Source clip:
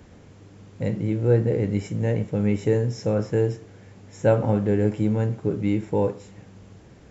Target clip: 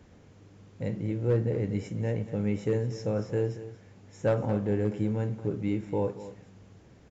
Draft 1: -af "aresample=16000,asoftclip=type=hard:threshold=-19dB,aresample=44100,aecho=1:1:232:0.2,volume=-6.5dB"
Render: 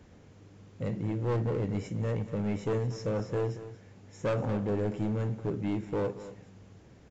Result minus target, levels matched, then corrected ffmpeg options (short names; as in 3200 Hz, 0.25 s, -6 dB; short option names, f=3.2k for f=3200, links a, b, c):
hard clip: distortion +16 dB
-af "aresample=16000,asoftclip=type=hard:threshold=-11dB,aresample=44100,aecho=1:1:232:0.2,volume=-6.5dB"